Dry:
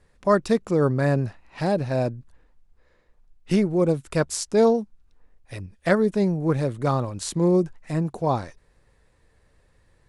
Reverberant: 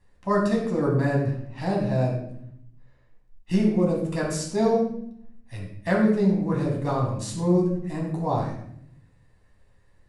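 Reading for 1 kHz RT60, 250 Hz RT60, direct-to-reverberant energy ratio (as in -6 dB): 0.65 s, 1.1 s, -2.5 dB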